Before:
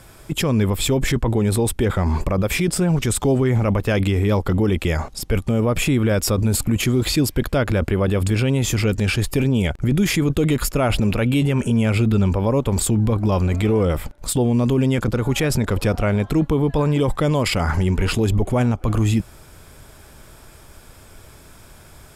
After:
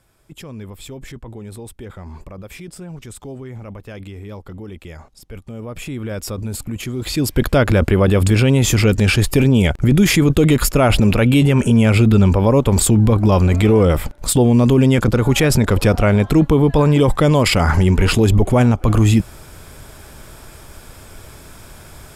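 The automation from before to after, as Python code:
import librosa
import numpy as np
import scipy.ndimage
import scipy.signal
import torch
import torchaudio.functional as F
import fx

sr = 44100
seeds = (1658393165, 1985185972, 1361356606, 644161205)

y = fx.gain(x, sr, db=fx.line((5.28, -15.0), (6.19, -7.0), (6.94, -7.0), (7.44, 5.5)))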